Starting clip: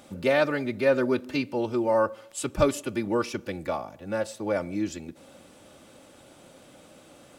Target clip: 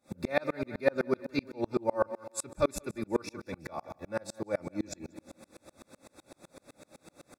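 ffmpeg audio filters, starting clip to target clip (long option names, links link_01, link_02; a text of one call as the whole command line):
ffmpeg -i in.wav -filter_complex "[0:a]asplit=2[link_01][link_02];[link_02]acompressor=threshold=-36dB:ratio=6,volume=-2dB[link_03];[link_01][link_03]amix=inputs=2:normalize=0,asuperstop=centerf=3000:order=12:qfactor=4.3,aecho=1:1:181|362|543|724|905:0.251|0.116|0.0532|0.0244|0.0112,aeval=exprs='val(0)*pow(10,-35*if(lt(mod(-7.9*n/s,1),2*abs(-7.9)/1000),1-mod(-7.9*n/s,1)/(2*abs(-7.9)/1000),(mod(-7.9*n/s,1)-2*abs(-7.9)/1000)/(1-2*abs(-7.9)/1000))/20)':channel_layout=same" out.wav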